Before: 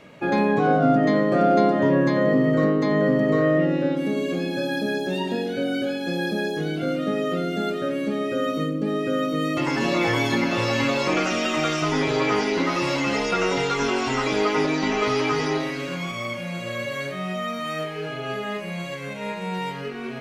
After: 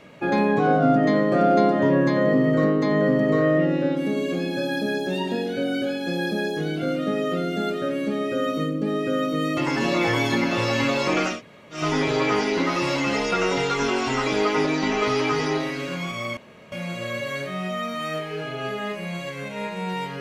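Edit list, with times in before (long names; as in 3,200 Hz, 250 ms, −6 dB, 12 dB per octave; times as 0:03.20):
0:11.34–0:11.78: fill with room tone, crossfade 0.16 s
0:16.37: splice in room tone 0.35 s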